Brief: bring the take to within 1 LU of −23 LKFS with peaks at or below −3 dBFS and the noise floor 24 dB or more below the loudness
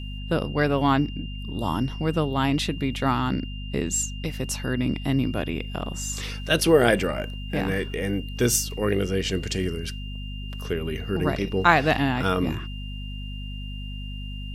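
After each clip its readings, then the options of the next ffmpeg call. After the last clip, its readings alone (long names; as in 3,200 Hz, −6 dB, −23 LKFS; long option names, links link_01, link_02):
mains hum 50 Hz; hum harmonics up to 250 Hz; level of the hum −31 dBFS; interfering tone 2,800 Hz; level of the tone −41 dBFS; integrated loudness −25.0 LKFS; sample peak −2.5 dBFS; target loudness −23.0 LKFS
→ -af "bandreject=frequency=50:width_type=h:width=6,bandreject=frequency=100:width_type=h:width=6,bandreject=frequency=150:width_type=h:width=6,bandreject=frequency=200:width_type=h:width=6,bandreject=frequency=250:width_type=h:width=6"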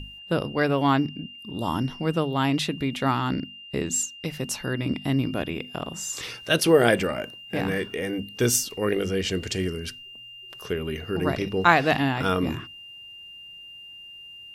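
mains hum none found; interfering tone 2,800 Hz; level of the tone −41 dBFS
→ -af "bandreject=frequency=2800:width=30"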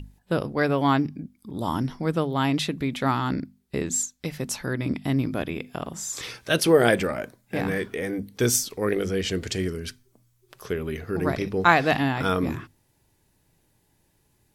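interfering tone none found; integrated loudness −25.5 LKFS; sample peak −2.5 dBFS; target loudness −23.0 LKFS
→ -af "volume=2.5dB,alimiter=limit=-3dB:level=0:latency=1"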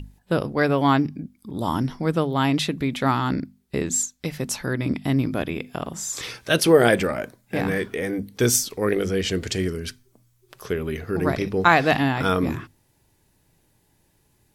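integrated loudness −23.0 LKFS; sample peak −3.0 dBFS; background noise floor −65 dBFS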